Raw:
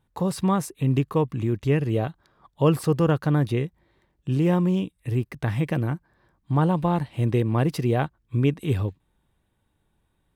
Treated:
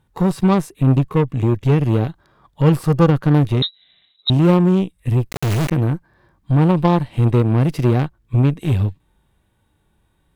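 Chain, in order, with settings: harmonic-percussive split percussive -11 dB; in parallel at -0.5 dB: compressor, threshold -31 dBFS, peak gain reduction 13.5 dB; on the sum: added harmonics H 3 -20 dB, 8 -24 dB, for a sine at -9.5 dBFS; 3.62–4.3 inverted band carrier 3900 Hz; 5.31–5.71 companded quantiser 2-bit; gain +8 dB

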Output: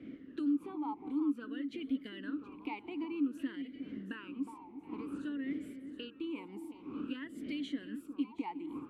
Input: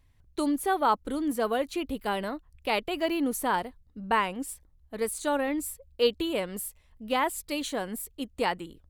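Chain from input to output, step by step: wind noise 490 Hz -40 dBFS; compressor 10:1, threshold -38 dBFS, peak gain reduction 19.5 dB; echo with dull and thin repeats by turns 0.362 s, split 1400 Hz, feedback 68%, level -10 dB; vowel sweep i-u 0.53 Hz; gain +11 dB

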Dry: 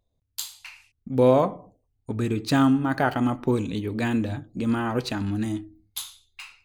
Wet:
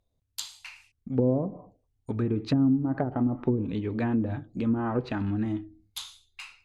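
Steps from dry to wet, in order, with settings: treble ducked by the level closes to 330 Hz, closed at -18 dBFS; gain -1.5 dB

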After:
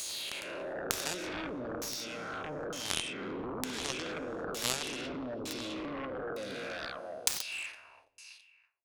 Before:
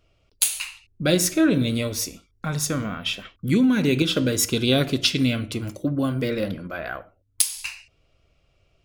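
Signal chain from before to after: spectral swells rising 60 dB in 2.00 s; bell 450 Hz +9 dB 2.1 oct; in parallel at +2.5 dB: limiter -5.5 dBFS, peak gain reduction 7 dB; on the sum: gate -43 dBFS, range -31 dB; on a send: feedback echo 0.331 s, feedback 28%, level -8 dB; on the sum: LFO low-pass saw down 1.1 Hz 450–7000 Hz; tilt +2.5 dB/oct; compressor 2.5:1, threshold -12 dBFS, peak gain reduction 9 dB; added harmonics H 3 -8 dB, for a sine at 4 dBFS; gain -7.5 dB

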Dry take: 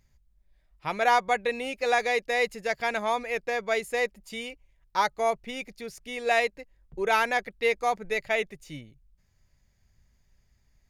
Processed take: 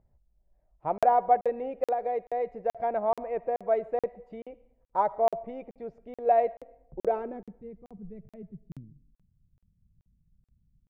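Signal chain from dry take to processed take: low-pass sweep 690 Hz -> 180 Hz, 7.02–7.56; 1.87–2.75 compressor 5:1, threshold -22 dBFS, peak gain reduction 7.5 dB; harmonic-percussive split harmonic -4 dB; digital reverb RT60 0.77 s, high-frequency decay 0.75×, pre-delay 30 ms, DRR 18.5 dB; crackling interface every 0.43 s, samples 2048, zero, from 0.98

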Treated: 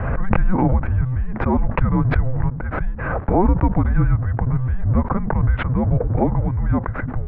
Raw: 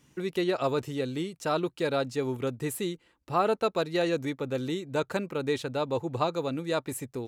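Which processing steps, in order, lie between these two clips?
G.711 law mismatch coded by mu; HPF 110 Hz 24 dB/oct; tilt shelf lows +5 dB, about 710 Hz; mistuned SSB -380 Hz 290–2000 Hz; backwards sustainer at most 30 dB/s; gain +8.5 dB

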